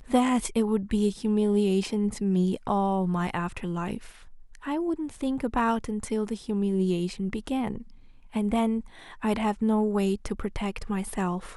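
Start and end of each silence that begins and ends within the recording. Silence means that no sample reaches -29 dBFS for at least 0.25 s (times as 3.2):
3.97–4.67
7.78–8.36
8.8–9.24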